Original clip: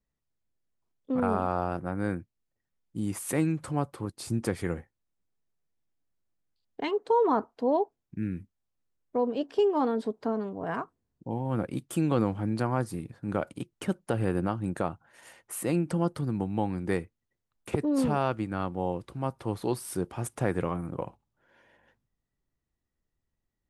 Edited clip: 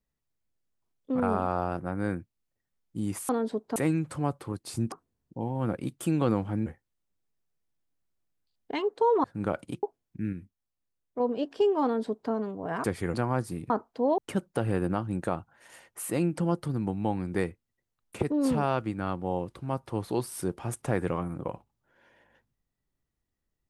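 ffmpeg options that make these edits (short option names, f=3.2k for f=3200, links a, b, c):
-filter_complex "[0:a]asplit=13[a][b][c][d][e][f][g][h][i][j][k][l][m];[a]atrim=end=3.292[n];[b]atrim=start=9.818:end=10.292[o];[c]atrim=start=3.288:end=4.452[p];[d]atrim=start=10.818:end=12.562[q];[e]atrim=start=4.748:end=7.332[r];[f]atrim=start=13.118:end=13.712[s];[g]atrim=start=7.808:end=8.312[t];[h]atrim=start=8.308:end=9.182,asetpts=PTS-STARTPTS,volume=-4.5dB[u];[i]atrim=start=9.178:end=10.822[v];[j]atrim=start=4.448:end=4.752[w];[k]atrim=start=12.558:end=13.122[x];[l]atrim=start=7.328:end=7.812[y];[m]atrim=start=13.708[z];[n][o]acrossfade=d=0.004:c1=hsin:c2=hsin[aa];[aa][p]acrossfade=d=0.004:c1=hsin:c2=hsin[ab];[ab][q]acrossfade=d=0.004:c1=hsin:c2=hsin[ac];[ac][r]acrossfade=d=0.004:c1=hsin:c2=hsin[ad];[ad][s]acrossfade=d=0.004:c1=hsin:c2=hsin[ae];[ae][t]acrossfade=d=0.004:c1=hsin:c2=hsin[af];[af][u]acrossfade=d=0.004:c1=hsin:c2=hsin[ag];[ag][v]acrossfade=d=0.004:c1=hsin:c2=hsin[ah];[ah][w]acrossfade=d=0.004:c1=hsin:c2=hsin[ai];[ai][x]acrossfade=d=0.004:c1=hsin:c2=hsin[aj];[aj][y]acrossfade=d=0.004:c1=hsin:c2=hsin[ak];[ak][z]acrossfade=d=0.004:c1=hsin:c2=hsin"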